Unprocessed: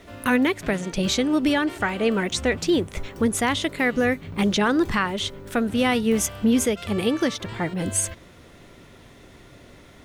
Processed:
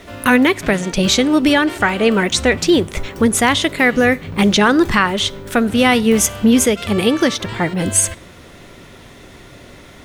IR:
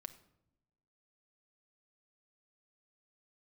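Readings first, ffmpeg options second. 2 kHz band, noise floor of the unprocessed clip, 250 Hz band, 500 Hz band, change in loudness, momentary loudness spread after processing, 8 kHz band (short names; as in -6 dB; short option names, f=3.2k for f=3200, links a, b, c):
+9.0 dB, -49 dBFS, +7.5 dB, +7.5 dB, +8.0 dB, 5 LU, +9.5 dB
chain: -filter_complex "[0:a]asplit=2[a][b];[1:a]atrim=start_sample=2205,lowshelf=f=460:g=-11[c];[b][c]afir=irnorm=-1:irlink=0,volume=-1dB[d];[a][d]amix=inputs=2:normalize=0,volume=6dB"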